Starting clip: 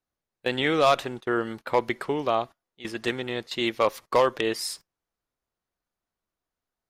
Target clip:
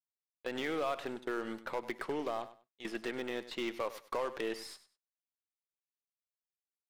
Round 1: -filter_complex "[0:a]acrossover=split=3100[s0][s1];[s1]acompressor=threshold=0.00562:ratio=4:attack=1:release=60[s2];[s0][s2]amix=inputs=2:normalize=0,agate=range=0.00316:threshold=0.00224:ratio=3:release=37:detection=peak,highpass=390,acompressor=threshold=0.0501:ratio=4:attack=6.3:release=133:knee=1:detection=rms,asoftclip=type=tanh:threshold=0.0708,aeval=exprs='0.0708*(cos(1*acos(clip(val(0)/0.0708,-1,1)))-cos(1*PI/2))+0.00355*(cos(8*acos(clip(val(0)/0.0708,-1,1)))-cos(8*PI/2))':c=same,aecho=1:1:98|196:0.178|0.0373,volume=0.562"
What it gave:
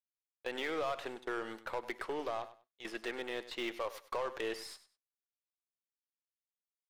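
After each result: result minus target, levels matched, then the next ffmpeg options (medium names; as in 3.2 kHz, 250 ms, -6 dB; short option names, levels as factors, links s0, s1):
saturation: distortion +8 dB; 250 Hz band -3.0 dB
-filter_complex "[0:a]acrossover=split=3100[s0][s1];[s1]acompressor=threshold=0.00562:ratio=4:attack=1:release=60[s2];[s0][s2]amix=inputs=2:normalize=0,agate=range=0.00316:threshold=0.00224:ratio=3:release=37:detection=peak,highpass=390,acompressor=threshold=0.0501:ratio=4:attack=6.3:release=133:knee=1:detection=rms,asoftclip=type=tanh:threshold=0.141,aeval=exprs='0.0708*(cos(1*acos(clip(val(0)/0.0708,-1,1)))-cos(1*PI/2))+0.00355*(cos(8*acos(clip(val(0)/0.0708,-1,1)))-cos(8*PI/2))':c=same,aecho=1:1:98|196:0.178|0.0373,volume=0.562"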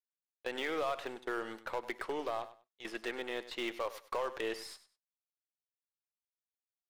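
250 Hz band -3.0 dB
-filter_complex "[0:a]acrossover=split=3100[s0][s1];[s1]acompressor=threshold=0.00562:ratio=4:attack=1:release=60[s2];[s0][s2]amix=inputs=2:normalize=0,agate=range=0.00316:threshold=0.00224:ratio=3:release=37:detection=peak,highpass=190,acompressor=threshold=0.0501:ratio=4:attack=6.3:release=133:knee=1:detection=rms,asoftclip=type=tanh:threshold=0.141,aeval=exprs='0.0708*(cos(1*acos(clip(val(0)/0.0708,-1,1)))-cos(1*PI/2))+0.00355*(cos(8*acos(clip(val(0)/0.0708,-1,1)))-cos(8*PI/2))':c=same,aecho=1:1:98|196:0.178|0.0373,volume=0.562"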